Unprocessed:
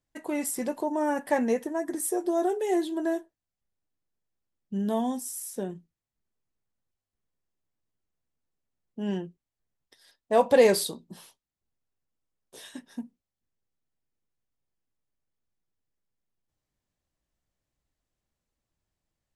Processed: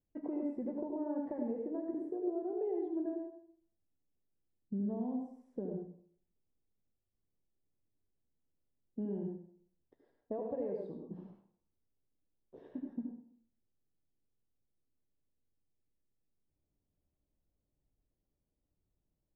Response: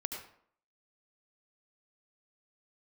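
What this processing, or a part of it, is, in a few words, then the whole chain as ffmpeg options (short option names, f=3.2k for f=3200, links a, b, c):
television next door: -filter_complex "[0:a]acompressor=threshold=-35dB:ratio=6,lowpass=490[a];[1:a]atrim=start_sample=2205[b];[a][b]afir=irnorm=-1:irlink=0,bandreject=f=60:t=h:w=6,bandreject=f=120:t=h:w=6,bandreject=f=180:t=h:w=6,volume=1.5dB"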